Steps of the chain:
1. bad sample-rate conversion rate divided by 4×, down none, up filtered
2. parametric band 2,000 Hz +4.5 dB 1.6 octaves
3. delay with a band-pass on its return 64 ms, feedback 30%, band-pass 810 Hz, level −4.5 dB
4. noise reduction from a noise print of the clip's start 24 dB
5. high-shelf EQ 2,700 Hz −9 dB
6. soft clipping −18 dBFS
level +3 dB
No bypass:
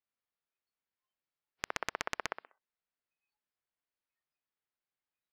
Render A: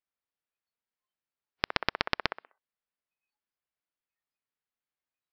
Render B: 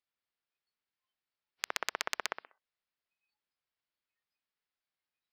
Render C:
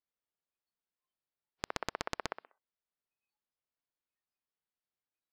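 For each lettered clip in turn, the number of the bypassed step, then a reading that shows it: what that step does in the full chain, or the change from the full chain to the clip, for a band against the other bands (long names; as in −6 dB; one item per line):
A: 6, distortion level −5 dB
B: 5, 250 Hz band −6.0 dB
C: 2, 125 Hz band +6.0 dB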